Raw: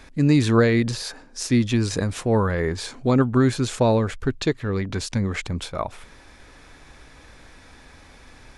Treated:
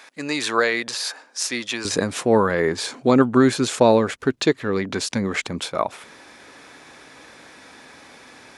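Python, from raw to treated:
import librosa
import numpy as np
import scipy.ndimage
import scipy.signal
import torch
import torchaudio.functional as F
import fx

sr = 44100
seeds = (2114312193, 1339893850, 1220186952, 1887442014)

y = fx.highpass(x, sr, hz=fx.steps((0.0, 690.0), (1.85, 220.0)), slope=12)
y = y * 10.0 ** (5.0 / 20.0)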